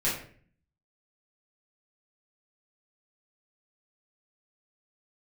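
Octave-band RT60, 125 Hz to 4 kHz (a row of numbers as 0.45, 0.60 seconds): 0.80, 0.75, 0.55, 0.40, 0.50, 0.35 seconds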